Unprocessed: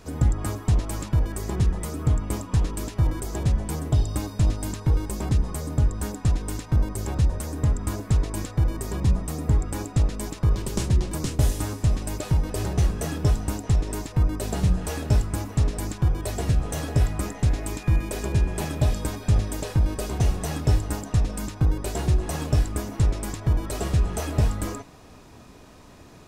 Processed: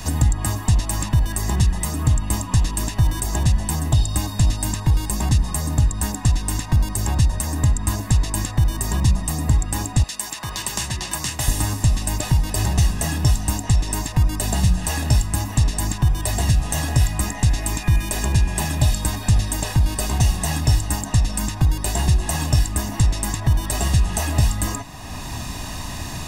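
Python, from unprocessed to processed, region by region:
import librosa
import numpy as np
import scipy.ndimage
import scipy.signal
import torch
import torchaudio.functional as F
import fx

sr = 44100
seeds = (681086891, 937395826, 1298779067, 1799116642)

y = fx.chain(x, sr, fx.highpass(hz=1500.0, slope=6),
    fx.band_squash(depth_pct=40), at=(10.03, 11.48))
y = fx.high_shelf(y, sr, hz=2200.0, db=10.0)
y = y + 0.63 * np.pad(y, (int(1.1 * sr / 1000.0), 0))[:len(y)]
y = fx.band_squash(y, sr, depth_pct=70)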